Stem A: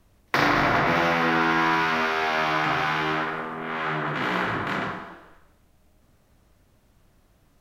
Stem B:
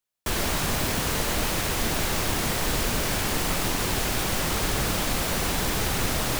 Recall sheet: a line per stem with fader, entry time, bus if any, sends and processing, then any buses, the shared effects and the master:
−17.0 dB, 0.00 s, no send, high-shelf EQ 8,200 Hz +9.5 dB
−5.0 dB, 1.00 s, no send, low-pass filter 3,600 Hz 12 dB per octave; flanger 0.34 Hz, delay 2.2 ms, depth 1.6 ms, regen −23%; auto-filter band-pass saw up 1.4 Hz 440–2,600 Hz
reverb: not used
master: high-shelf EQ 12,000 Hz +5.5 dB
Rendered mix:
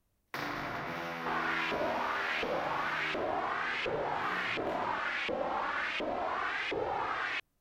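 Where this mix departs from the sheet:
stem B −5.0 dB → +6.0 dB
master: missing high-shelf EQ 12,000 Hz +5.5 dB

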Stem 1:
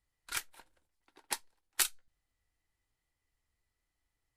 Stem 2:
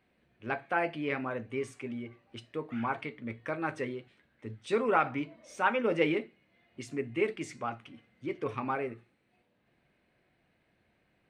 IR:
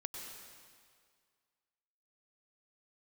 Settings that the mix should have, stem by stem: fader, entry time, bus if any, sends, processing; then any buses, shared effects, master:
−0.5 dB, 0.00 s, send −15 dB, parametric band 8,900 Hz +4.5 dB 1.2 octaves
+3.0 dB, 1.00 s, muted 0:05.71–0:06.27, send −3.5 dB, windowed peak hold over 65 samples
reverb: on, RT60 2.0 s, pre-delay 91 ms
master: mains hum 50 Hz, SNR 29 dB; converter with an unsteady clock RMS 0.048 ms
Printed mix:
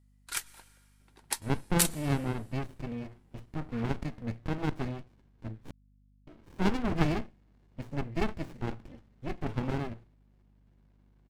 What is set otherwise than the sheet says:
stem 2: send off
master: missing converter with an unsteady clock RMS 0.048 ms

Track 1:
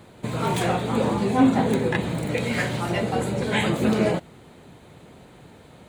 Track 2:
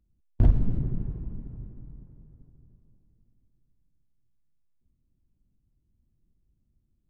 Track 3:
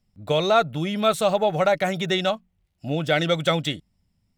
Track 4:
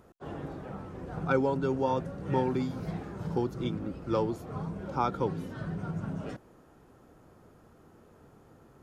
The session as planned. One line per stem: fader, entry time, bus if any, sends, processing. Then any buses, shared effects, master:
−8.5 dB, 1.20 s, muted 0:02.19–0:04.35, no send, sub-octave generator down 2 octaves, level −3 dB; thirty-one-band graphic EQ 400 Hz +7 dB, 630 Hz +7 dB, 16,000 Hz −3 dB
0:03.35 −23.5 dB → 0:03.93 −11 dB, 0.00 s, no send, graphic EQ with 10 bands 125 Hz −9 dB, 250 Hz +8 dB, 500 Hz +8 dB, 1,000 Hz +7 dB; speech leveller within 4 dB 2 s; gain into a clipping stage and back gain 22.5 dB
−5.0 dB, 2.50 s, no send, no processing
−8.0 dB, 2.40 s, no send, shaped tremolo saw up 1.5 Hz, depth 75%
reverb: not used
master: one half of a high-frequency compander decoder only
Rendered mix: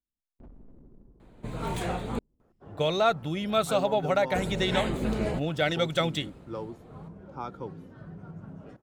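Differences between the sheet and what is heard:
stem 1: missing thirty-one-band graphic EQ 400 Hz +7 dB, 630 Hz +7 dB, 16,000 Hz −3 dB
stem 4: missing shaped tremolo saw up 1.5 Hz, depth 75%

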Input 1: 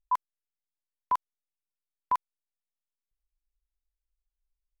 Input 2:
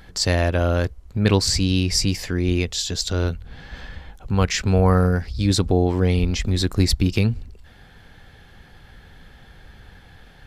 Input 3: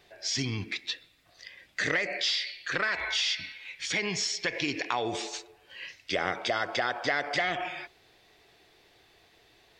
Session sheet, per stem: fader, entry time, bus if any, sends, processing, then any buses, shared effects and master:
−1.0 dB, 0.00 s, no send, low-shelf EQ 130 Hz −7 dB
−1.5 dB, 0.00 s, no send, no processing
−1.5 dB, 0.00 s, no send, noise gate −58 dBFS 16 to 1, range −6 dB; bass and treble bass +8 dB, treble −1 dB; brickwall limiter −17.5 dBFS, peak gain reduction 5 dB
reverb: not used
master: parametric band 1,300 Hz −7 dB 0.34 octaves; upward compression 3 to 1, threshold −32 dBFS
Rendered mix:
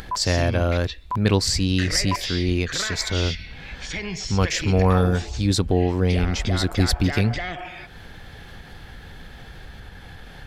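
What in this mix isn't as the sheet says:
stem 3: missing noise gate −58 dBFS 16 to 1, range −6 dB
master: missing parametric band 1,300 Hz −7 dB 0.34 octaves

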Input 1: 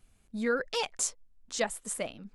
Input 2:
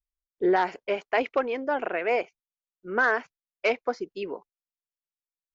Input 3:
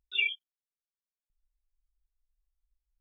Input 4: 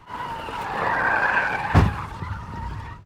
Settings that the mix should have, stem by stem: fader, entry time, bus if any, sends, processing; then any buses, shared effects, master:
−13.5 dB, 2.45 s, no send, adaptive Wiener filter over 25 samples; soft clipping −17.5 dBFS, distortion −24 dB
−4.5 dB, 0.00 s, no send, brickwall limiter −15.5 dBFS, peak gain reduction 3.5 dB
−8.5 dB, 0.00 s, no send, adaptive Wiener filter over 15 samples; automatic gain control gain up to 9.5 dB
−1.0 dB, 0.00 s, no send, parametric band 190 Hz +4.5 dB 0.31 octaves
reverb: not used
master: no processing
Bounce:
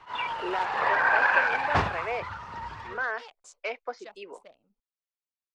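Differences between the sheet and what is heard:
stem 4: missing parametric band 190 Hz +4.5 dB 0.31 octaves
master: extra three-way crossover with the lows and the highs turned down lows −14 dB, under 460 Hz, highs −23 dB, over 7,000 Hz

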